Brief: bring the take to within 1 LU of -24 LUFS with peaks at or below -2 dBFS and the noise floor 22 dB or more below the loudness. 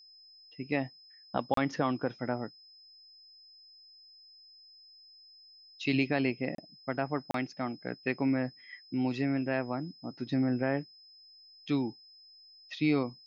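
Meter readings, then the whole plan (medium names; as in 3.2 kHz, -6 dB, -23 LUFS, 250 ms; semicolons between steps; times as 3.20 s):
dropouts 3; longest dropout 33 ms; steady tone 5.1 kHz; tone level -54 dBFS; loudness -33.0 LUFS; peak level -15.0 dBFS; loudness target -24.0 LUFS
-> interpolate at 1.54/6.55/7.31 s, 33 ms; band-stop 5.1 kHz, Q 30; trim +9 dB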